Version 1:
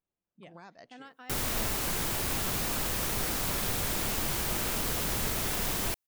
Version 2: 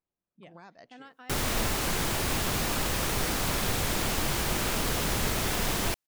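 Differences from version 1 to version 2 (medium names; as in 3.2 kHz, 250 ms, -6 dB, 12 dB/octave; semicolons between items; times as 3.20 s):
background +4.5 dB; master: add treble shelf 9.8 kHz -8.5 dB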